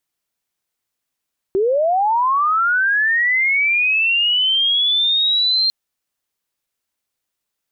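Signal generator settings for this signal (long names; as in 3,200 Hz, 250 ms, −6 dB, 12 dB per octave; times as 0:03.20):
glide linear 370 Hz → 4,200 Hz −13.5 dBFS → −13.5 dBFS 4.15 s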